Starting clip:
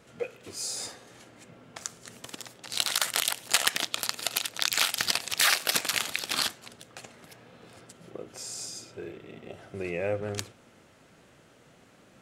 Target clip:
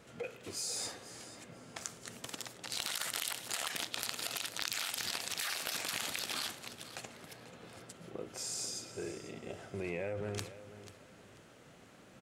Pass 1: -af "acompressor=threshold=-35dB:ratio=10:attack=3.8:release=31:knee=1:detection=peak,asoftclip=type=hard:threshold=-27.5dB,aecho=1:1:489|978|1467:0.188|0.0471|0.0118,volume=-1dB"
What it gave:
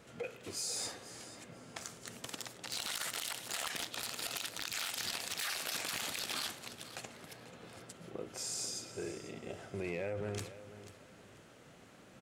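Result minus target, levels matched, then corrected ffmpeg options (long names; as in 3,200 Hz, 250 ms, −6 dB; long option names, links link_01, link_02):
hard clipping: distortion +19 dB
-af "acompressor=threshold=-35dB:ratio=10:attack=3.8:release=31:knee=1:detection=peak,asoftclip=type=hard:threshold=-15.5dB,aecho=1:1:489|978|1467:0.188|0.0471|0.0118,volume=-1dB"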